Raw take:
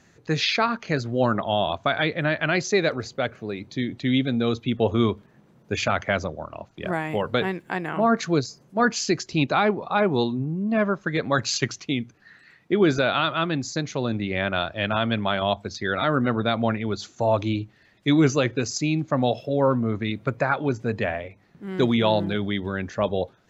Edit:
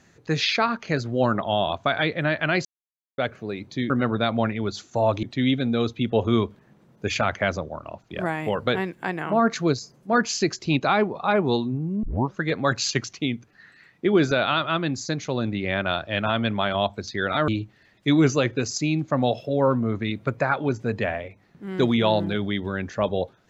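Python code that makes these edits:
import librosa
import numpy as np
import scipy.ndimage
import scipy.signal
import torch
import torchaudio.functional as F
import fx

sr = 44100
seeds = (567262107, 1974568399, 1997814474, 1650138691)

y = fx.edit(x, sr, fx.silence(start_s=2.65, length_s=0.53),
    fx.tape_start(start_s=10.7, length_s=0.3),
    fx.move(start_s=16.15, length_s=1.33, to_s=3.9), tone=tone)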